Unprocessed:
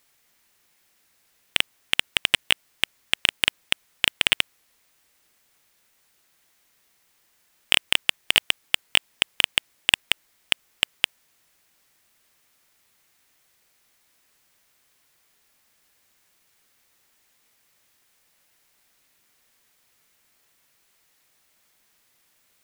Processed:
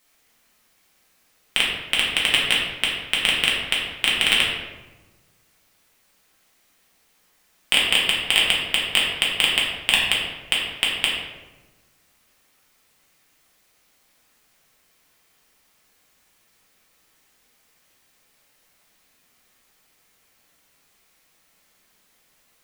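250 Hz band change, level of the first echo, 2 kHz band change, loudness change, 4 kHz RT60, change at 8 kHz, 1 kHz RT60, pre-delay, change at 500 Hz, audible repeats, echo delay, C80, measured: +6.0 dB, none, +3.5 dB, +3.5 dB, 0.70 s, +2.0 dB, 1.1 s, 4 ms, +5.5 dB, none, none, 4.0 dB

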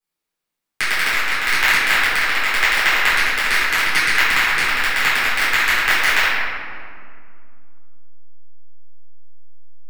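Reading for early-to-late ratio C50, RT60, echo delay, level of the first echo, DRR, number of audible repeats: -2.5 dB, 2.2 s, none, none, -12.0 dB, none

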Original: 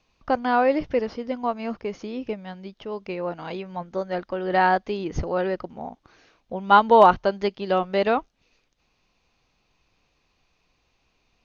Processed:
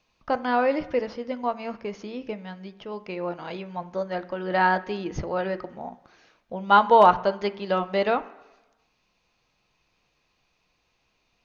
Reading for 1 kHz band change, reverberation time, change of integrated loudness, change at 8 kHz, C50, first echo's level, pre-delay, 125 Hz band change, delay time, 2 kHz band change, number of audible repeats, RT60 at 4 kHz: -1.5 dB, 1.1 s, -1.5 dB, n/a, 16.5 dB, none, 3 ms, -2.0 dB, none, -0.5 dB, none, 1.0 s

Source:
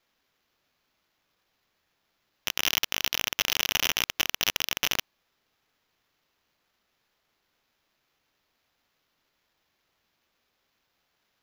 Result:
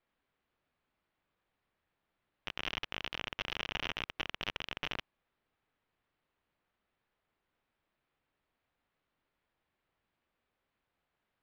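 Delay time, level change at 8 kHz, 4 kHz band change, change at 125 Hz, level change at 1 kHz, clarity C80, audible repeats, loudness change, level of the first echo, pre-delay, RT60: none, -27.5 dB, -13.0 dB, -4.0 dB, -7.0 dB, none, none, -12.5 dB, none, none, none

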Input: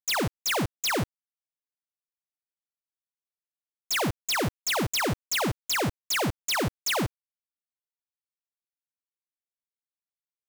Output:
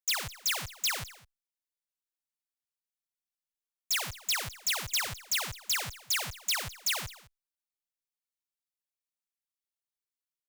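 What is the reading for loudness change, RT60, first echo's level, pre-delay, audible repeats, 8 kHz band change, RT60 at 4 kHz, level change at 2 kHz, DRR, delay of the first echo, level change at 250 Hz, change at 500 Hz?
-3.5 dB, none, -19.5 dB, none, 1, -0.5 dB, none, -4.5 dB, none, 0.208 s, -22.5 dB, -17.0 dB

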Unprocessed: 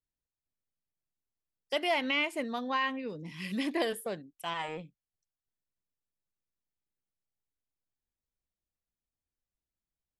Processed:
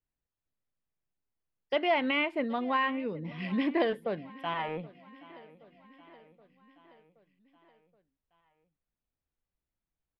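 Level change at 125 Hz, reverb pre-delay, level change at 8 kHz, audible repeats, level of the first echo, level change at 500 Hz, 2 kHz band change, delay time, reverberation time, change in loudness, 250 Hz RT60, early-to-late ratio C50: +4.0 dB, none, under -20 dB, 4, -21.0 dB, +3.5 dB, +0.5 dB, 0.774 s, none, +2.0 dB, none, none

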